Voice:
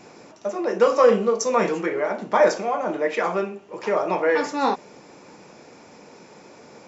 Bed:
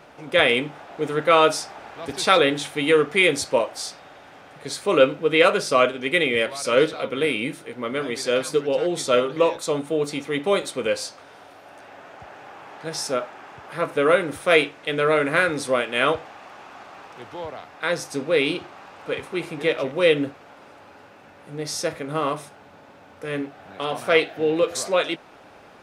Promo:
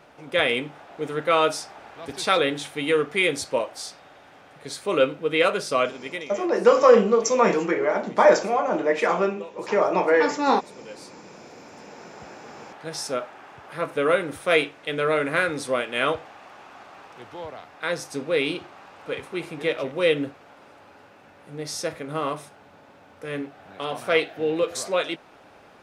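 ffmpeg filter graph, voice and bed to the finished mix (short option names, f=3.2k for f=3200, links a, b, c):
-filter_complex "[0:a]adelay=5850,volume=1.5dB[a];[1:a]volume=13.5dB,afade=t=out:st=5.75:d=0.56:silence=0.149624,afade=t=in:st=10.85:d=1.28:silence=0.133352[b];[a][b]amix=inputs=2:normalize=0"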